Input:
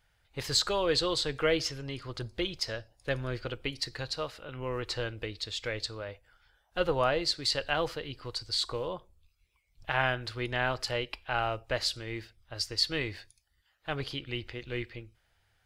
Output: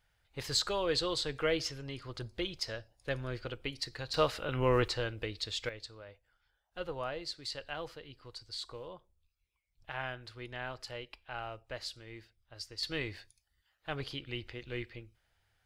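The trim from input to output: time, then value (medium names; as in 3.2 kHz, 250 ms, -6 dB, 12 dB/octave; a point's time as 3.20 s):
-4 dB
from 4.14 s +7 dB
from 4.88 s -1 dB
from 5.69 s -11 dB
from 12.83 s -4 dB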